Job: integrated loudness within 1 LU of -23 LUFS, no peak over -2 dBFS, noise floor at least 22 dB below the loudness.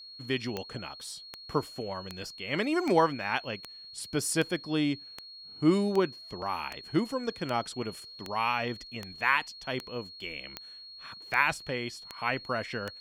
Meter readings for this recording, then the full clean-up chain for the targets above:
clicks found 17; steady tone 4.3 kHz; tone level -45 dBFS; loudness -31.5 LUFS; peak level -9.0 dBFS; loudness target -23.0 LUFS
-> de-click; band-stop 4.3 kHz, Q 30; trim +8.5 dB; peak limiter -2 dBFS

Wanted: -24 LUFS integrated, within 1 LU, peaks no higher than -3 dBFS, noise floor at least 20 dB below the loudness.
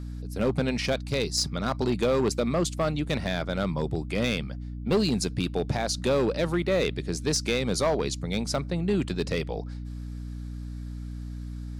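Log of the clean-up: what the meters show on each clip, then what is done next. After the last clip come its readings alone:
clipped samples 1.1%; clipping level -18.0 dBFS; hum 60 Hz; highest harmonic 300 Hz; hum level -34 dBFS; loudness -27.5 LUFS; peak level -18.0 dBFS; loudness target -24.0 LUFS
-> clip repair -18 dBFS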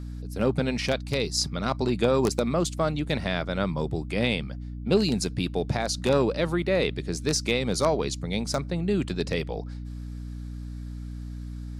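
clipped samples 0.0%; hum 60 Hz; highest harmonic 300 Hz; hum level -33 dBFS
-> hum notches 60/120/180/240/300 Hz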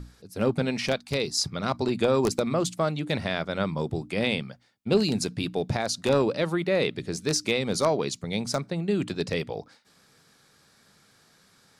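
hum not found; loudness -27.0 LUFS; peak level -8.5 dBFS; loudness target -24.0 LUFS
-> trim +3 dB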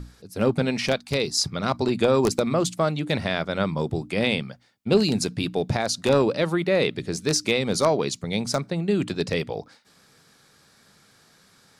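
loudness -24.0 LUFS; peak level -5.5 dBFS; noise floor -58 dBFS

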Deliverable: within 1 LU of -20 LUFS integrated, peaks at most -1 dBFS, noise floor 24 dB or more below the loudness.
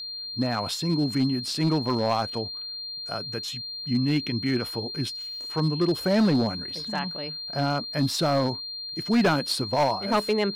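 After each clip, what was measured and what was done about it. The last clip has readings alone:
clipped samples 1.5%; clipping level -16.5 dBFS; steady tone 4.2 kHz; tone level -33 dBFS; loudness -26.0 LUFS; peak level -16.5 dBFS; loudness target -20.0 LUFS
-> clip repair -16.5 dBFS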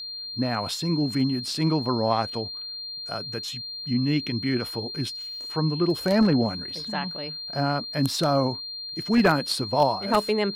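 clipped samples 0.0%; steady tone 4.2 kHz; tone level -33 dBFS
-> band-stop 4.2 kHz, Q 30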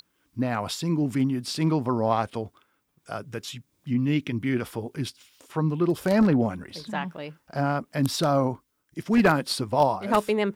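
steady tone not found; loudness -25.5 LUFS; peak level -7.0 dBFS; loudness target -20.0 LUFS
-> trim +5.5 dB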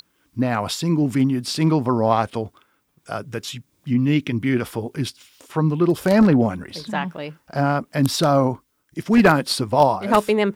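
loudness -20.0 LUFS; peak level -1.5 dBFS; noise floor -67 dBFS

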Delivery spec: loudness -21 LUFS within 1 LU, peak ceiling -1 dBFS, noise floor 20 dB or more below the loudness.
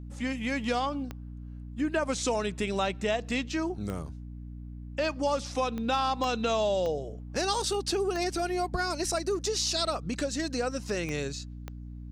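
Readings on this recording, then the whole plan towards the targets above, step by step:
clicks found 8; hum 60 Hz; highest harmonic 300 Hz; hum level -39 dBFS; loudness -30.0 LUFS; peak level -15.5 dBFS; loudness target -21.0 LUFS
-> de-click; hum notches 60/120/180/240/300 Hz; trim +9 dB

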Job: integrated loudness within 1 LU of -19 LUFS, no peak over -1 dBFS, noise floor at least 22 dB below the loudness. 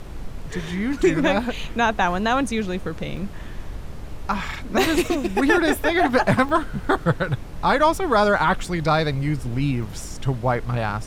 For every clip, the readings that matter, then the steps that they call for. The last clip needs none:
dropouts 3; longest dropout 2.7 ms; noise floor -35 dBFS; noise floor target -44 dBFS; loudness -21.5 LUFS; peak level -5.5 dBFS; loudness target -19.0 LUFS
-> interpolate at 3.17/6.49/9.83 s, 2.7 ms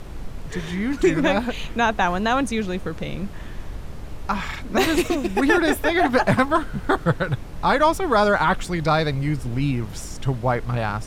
dropouts 0; noise floor -35 dBFS; noise floor target -44 dBFS
-> noise print and reduce 9 dB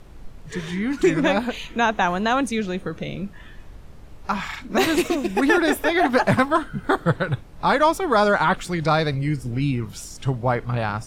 noise floor -42 dBFS; noise floor target -44 dBFS
-> noise print and reduce 6 dB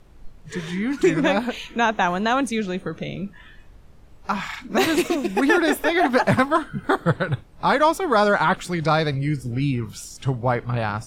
noise floor -47 dBFS; loudness -22.0 LUFS; peak level -6.0 dBFS; loudness target -19.0 LUFS
-> trim +3 dB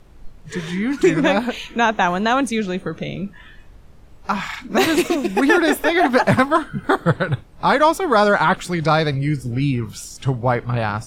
loudness -19.0 LUFS; peak level -3.0 dBFS; noise floor -44 dBFS

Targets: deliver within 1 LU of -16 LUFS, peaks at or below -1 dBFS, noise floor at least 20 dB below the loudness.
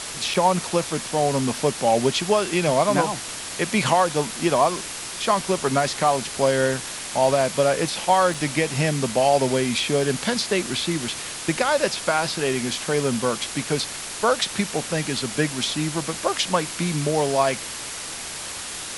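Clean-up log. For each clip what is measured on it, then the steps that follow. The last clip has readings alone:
dropouts 2; longest dropout 3.9 ms; noise floor -33 dBFS; noise floor target -43 dBFS; loudness -22.5 LUFS; peak level -5.5 dBFS; loudness target -16.0 LUFS
-> interpolate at 0.34/8.34 s, 3.9 ms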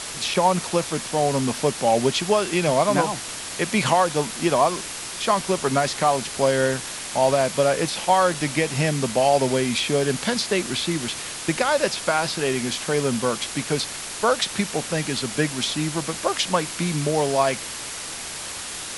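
dropouts 0; noise floor -33 dBFS; noise floor target -43 dBFS
-> noise reduction 10 dB, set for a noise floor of -33 dBFS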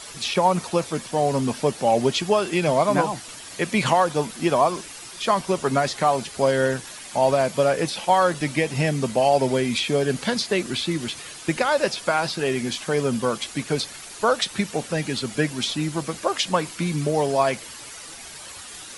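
noise floor -40 dBFS; noise floor target -43 dBFS
-> noise reduction 6 dB, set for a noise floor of -40 dBFS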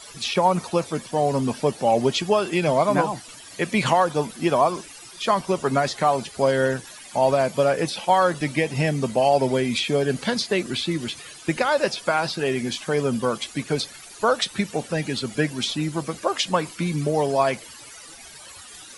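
noise floor -43 dBFS; loudness -23.0 LUFS; peak level -6.0 dBFS; loudness target -16.0 LUFS
-> trim +7 dB; peak limiter -1 dBFS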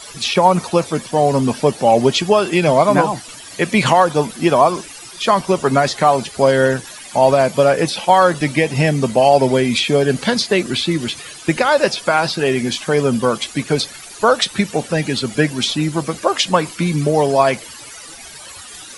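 loudness -16.0 LUFS; peak level -1.0 dBFS; noise floor -36 dBFS

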